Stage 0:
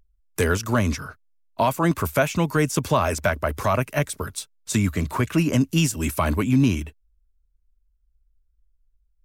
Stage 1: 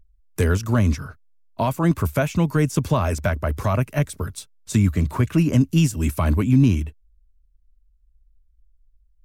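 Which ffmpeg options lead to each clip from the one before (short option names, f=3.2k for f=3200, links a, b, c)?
-af "lowshelf=f=260:g=11,volume=-4dB"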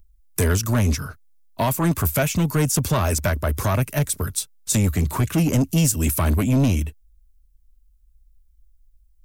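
-filter_complex "[0:a]asoftclip=type=tanh:threshold=-16dB,acrossover=split=850[a][b];[b]crystalizer=i=2:c=0[c];[a][c]amix=inputs=2:normalize=0,volume=2.5dB"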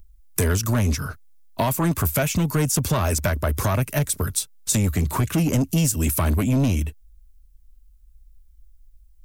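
-af "acompressor=threshold=-28dB:ratio=2,volume=5dB"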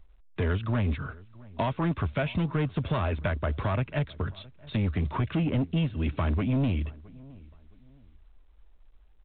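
-filter_complex "[0:a]asplit=2[a][b];[b]adelay=667,lowpass=f=1.4k:p=1,volume=-22dB,asplit=2[c][d];[d]adelay=667,lowpass=f=1.4k:p=1,volume=0.32[e];[a][c][e]amix=inputs=3:normalize=0,volume=-6dB" -ar 8000 -c:a pcm_alaw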